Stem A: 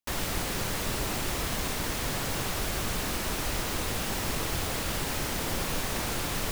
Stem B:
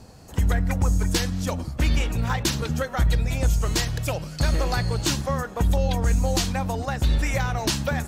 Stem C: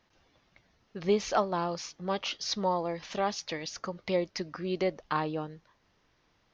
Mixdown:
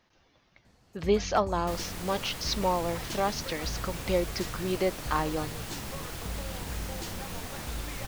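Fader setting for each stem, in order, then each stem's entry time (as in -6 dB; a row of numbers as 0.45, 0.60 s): -8.5, -17.0, +1.5 dB; 1.60, 0.65, 0.00 s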